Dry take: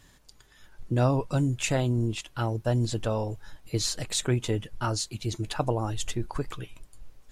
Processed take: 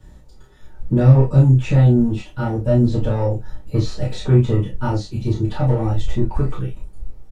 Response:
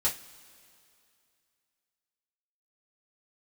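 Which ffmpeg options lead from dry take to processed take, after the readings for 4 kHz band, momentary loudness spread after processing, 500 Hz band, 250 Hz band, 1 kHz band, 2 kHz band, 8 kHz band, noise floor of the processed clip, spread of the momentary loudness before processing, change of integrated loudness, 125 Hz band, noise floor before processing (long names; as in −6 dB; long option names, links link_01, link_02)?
−3.5 dB, 12 LU, +8.0 dB, +11.5 dB, +4.0 dB, +1.5 dB, below −10 dB, −43 dBFS, 9 LU, +11.0 dB, +13.5 dB, −58 dBFS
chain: -filter_complex "[0:a]acrossover=split=240|1400|1700[link_01][link_02][link_03][link_04];[link_02]volume=30dB,asoftclip=hard,volume=-30dB[link_05];[link_01][link_05][link_03][link_04]amix=inputs=4:normalize=0,tiltshelf=frequency=970:gain=9,acrossover=split=5100[link_06][link_07];[link_07]acompressor=threshold=-59dB:ratio=4:attack=1:release=60[link_08];[link_06][link_08]amix=inputs=2:normalize=0,asplit=2[link_09][link_10];[link_10]adelay=30,volume=-3.5dB[link_11];[link_09][link_11]amix=inputs=2:normalize=0[link_12];[1:a]atrim=start_sample=2205,atrim=end_sample=3528[link_13];[link_12][link_13]afir=irnorm=-1:irlink=0,volume=-2.5dB"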